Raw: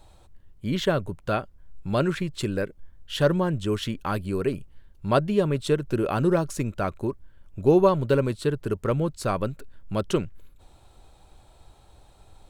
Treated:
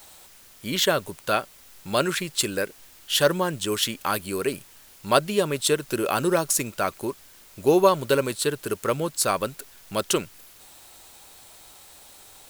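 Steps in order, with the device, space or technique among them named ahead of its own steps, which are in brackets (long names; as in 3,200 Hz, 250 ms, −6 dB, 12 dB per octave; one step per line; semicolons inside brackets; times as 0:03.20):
turntable without a phono preamp (RIAA equalisation recording; white noise bed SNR 25 dB)
level +3.5 dB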